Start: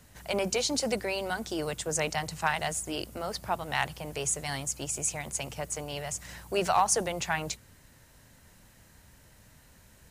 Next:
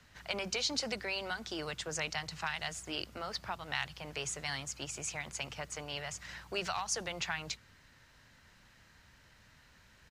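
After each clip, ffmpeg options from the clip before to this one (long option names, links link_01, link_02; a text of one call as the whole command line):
ffmpeg -i in.wav -filter_complex "[0:a]firequalizer=gain_entry='entry(600,0);entry(1300,8);entry(4700,6);entry(9200,-9)':delay=0.05:min_phase=1,acrossover=split=150|3000[link_01][link_02][link_03];[link_02]acompressor=threshold=-29dB:ratio=4[link_04];[link_01][link_04][link_03]amix=inputs=3:normalize=0,volume=-7dB" out.wav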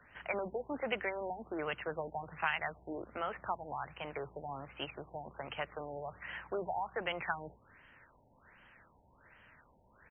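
ffmpeg -i in.wav -af "bass=frequency=250:gain=-9,treble=frequency=4000:gain=-3,afftfilt=real='re*lt(b*sr/1024,920*pow(3300/920,0.5+0.5*sin(2*PI*1.3*pts/sr)))':imag='im*lt(b*sr/1024,920*pow(3300/920,0.5+0.5*sin(2*PI*1.3*pts/sr)))':win_size=1024:overlap=0.75,volume=4dB" out.wav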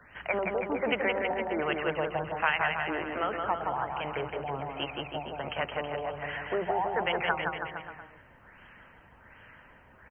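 ffmpeg -i in.wav -af "aecho=1:1:170|323|460.7|584.6|696.2:0.631|0.398|0.251|0.158|0.1,volume=6.5dB" out.wav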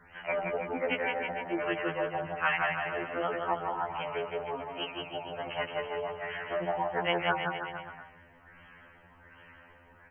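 ffmpeg -i in.wav -af "afftfilt=real='re*2*eq(mod(b,4),0)':imag='im*2*eq(mod(b,4),0)':win_size=2048:overlap=0.75,volume=1dB" out.wav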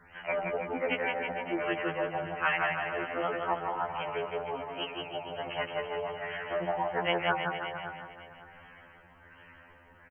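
ffmpeg -i in.wav -af "aecho=1:1:560|1120|1680:0.2|0.0539|0.0145" out.wav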